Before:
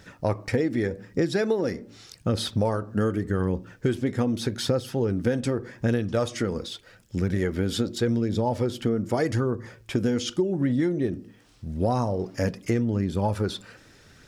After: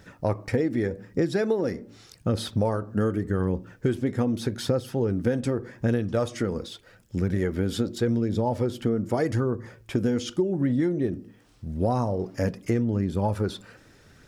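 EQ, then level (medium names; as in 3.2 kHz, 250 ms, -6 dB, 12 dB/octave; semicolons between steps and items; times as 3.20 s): peaking EQ 4.4 kHz -4.5 dB 2.6 oct; 0.0 dB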